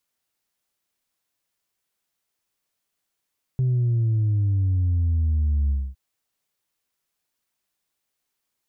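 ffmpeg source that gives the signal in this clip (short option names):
-f lavfi -i "aevalsrc='0.119*clip((2.36-t)/0.25,0,1)*tanh(1.12*sin(2*PI*130*2.36/log(65/130)*(exp(log(65/130)*t/2.36)-1)))/tanh(1.12)':d=2.36:s=44100"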